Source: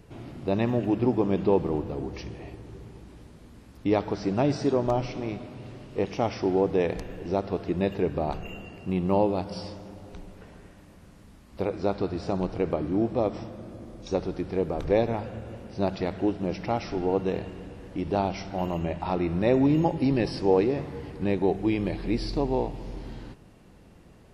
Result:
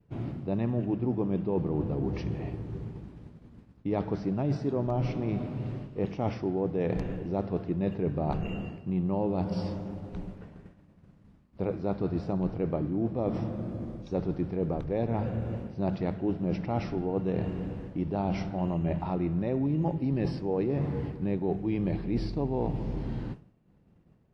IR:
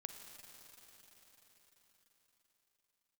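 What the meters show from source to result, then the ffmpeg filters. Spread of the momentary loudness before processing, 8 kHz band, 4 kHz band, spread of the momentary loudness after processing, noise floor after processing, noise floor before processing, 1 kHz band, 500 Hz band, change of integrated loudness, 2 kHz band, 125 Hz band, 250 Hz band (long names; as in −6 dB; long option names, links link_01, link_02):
17 LU, can't be measured, −9.5 dB, 8 LU, −60 dBFS, −52 dBFS, −6.5 dB, −6.0 dB, −4.0 dB, −7.5 dB, +1.5 dB, −2.5 dB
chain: -af "aemphasis=mode=reproduction:type=75kf,agate=range=-33dB:threshold=-41dB:ratio=3:detection=peak,equalizer=frequency=150:width_type=o:width=1.5:gain=8.5,areverse,acompressor=threshold=-28dB:ratio=6,areverse,volume=2dB"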